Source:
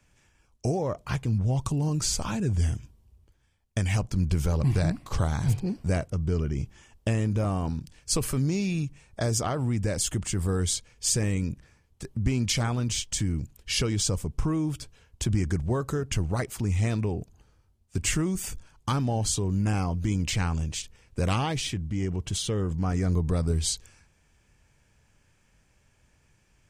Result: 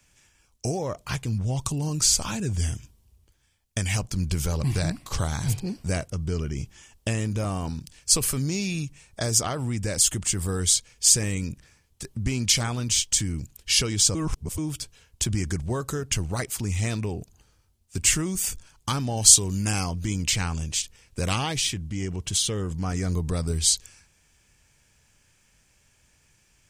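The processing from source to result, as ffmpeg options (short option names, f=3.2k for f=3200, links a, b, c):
-filter_complex "[0:a]asettb=1/sr,asplit=3[a][b][c];[a]atrim=end=19.174[d];[b]atrim=start=19.17:end=19.91,asetpts=PTS-STARTPTS,afade=t=in:d=0.004:c=qsin,afade=t=out:st=0.736:d=0.004:c=qsin,highshelf=f=2.7k:g=8[e];[c]atrim=start=19.906[f];[d][e]acrossfade=d=0.004:c1=hsin:c2=qsin[g];[g][f]acrossfade=d=0.004:c1=qsin:c2=hsin,asplit=3[h][i][j];[h]atrim=end=14.152[k];[i]atrim=start=14.148:end=14.582,asetpts=PTS-STARTPTS,areverse[l];[j]atrim=start=14.578[m];[k][l]acrossfade=d=0.004:c1=hsin:c2=hsin[n];[n][m]acrossfade=d=0.004:c1=hsin:c2=hsin,highshelf=f=2.4k:g=11,volume=-1.5dB"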